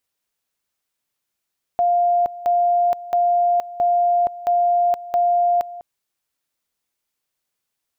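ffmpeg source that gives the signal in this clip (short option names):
-f lavfi -i "aevalsrc='pow(10,(-14-17*gte(mod(t,0.67),0.47))/20)*sin(2*PI*701*t)':d=4.02:s=44100"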